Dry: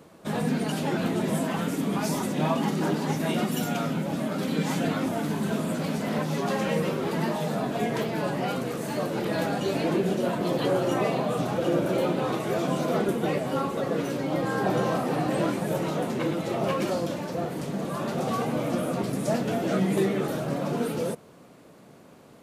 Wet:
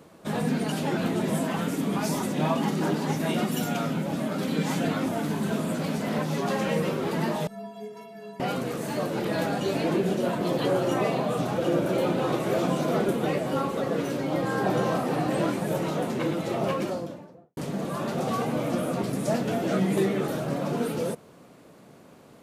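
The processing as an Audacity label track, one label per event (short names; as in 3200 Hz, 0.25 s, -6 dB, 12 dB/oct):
7.470000	8.400000	metallic resonator 200 Hz, decay 0.61 s, inharmonicity 0.03
11.490000	12.150000	echo throw 0.57 s, feedback 65%, level -7.5 dB
16.570000	17.570000	studio fade out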